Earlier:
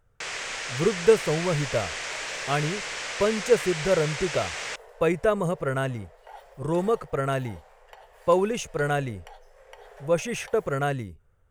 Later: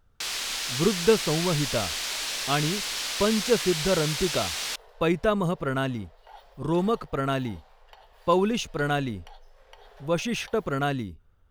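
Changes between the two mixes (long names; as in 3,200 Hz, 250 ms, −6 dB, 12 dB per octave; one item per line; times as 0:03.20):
speech +3.5 dB
first sound: remove high-frequency loss of the air 130 metres
master: add octave-band graphic EQ 125/250/500/2,000/4,000/8,000 Hz −6/+5/−8/−6/+8/−10 dB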